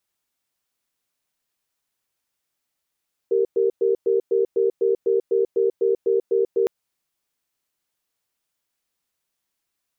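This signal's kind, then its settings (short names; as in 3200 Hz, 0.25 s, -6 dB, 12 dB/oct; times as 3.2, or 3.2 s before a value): cadence 391 Hz, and 463 Hz, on 0.14 s, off 0.11 s, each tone -19 dBFS 3.36 s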